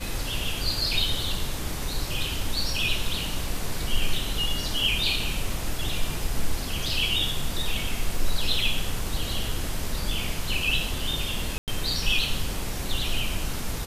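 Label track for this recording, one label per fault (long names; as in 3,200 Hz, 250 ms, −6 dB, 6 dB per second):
11.580000	11.680000	drop-out 98 ms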